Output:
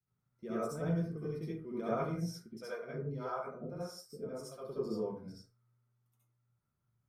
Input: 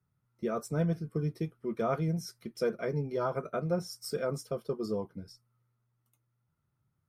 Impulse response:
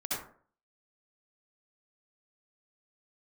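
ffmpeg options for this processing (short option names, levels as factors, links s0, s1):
-filter_complex "[0:a]asettb=1/sr,asplit=3[s0][s1][s2];[s0]atrim=end=2.394[s3];[s1]atrim=start=2.39:end=4.62,asetpts=PTS-STARTPTS,afade=t=in:d=0.004:c=qsin,afade=t=out:st=2.226:d=0.004:c=qsin,acrossover=split=490[s4][s5];[s4]aeval=exprs='val(0)*(1-1/2+1/2*cos(2*PI*1.7*n/s))':c=same[s6];[s5]aeval=exprs='val(0)*(1-1/2-1/2*cos(2*PI*1.7*n/s))':c=same[s7];[s6][s7]amix=inputs=2:normalize=0[s8];[s2]atrim=start=4.616[s9];[s3][s8]acrossfade=d=0.004:c1=hsin:c2=qsin[s10];[s10][s9]acrossfade=d=0.004:c1=qsin:c2=hsin[s11];[1:a]atrim=start_sample=2205,afade=t=out:st=0.31:d=0.01,atrim=end_sample=14112[s12];[s11][s12]afir=irnorm=-1:irlink=0,volume=0.398"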